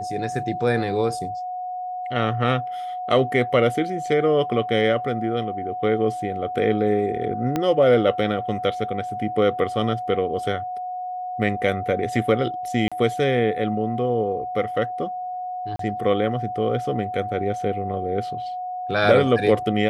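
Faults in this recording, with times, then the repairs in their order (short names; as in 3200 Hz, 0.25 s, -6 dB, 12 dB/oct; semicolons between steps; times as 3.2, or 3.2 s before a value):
tone 730 Hz -27 dBFS
7.56 pop -10 dBFS
12.88–12.92 gap 36 ms
15.76–15.79 gap 33 ms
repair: de-click; notch 730 Hz, Q 30; interpolate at 12.88, 36 ms; interpolate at 15.76, 33 ms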